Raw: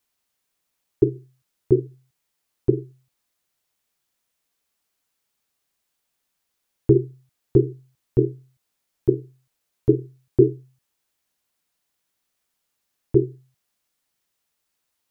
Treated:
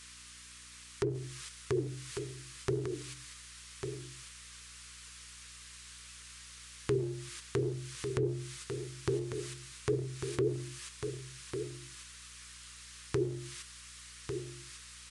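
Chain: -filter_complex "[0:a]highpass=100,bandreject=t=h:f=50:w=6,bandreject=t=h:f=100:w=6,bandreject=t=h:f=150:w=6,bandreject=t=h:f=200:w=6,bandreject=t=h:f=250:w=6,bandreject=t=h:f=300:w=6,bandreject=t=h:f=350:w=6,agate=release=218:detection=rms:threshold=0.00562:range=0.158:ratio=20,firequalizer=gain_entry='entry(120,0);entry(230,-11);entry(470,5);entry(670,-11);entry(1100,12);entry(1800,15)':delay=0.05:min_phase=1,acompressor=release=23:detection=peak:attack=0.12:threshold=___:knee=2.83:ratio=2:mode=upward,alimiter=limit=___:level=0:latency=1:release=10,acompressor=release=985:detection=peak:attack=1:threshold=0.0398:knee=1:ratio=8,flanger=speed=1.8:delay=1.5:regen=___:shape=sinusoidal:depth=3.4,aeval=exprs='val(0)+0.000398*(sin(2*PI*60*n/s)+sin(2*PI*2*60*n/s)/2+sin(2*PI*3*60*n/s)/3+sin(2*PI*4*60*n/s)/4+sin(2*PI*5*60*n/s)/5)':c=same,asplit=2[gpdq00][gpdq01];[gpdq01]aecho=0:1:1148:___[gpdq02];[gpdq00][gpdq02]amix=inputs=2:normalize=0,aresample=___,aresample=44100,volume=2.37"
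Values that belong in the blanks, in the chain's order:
0.126, 0.178, 83, 0.447, 22050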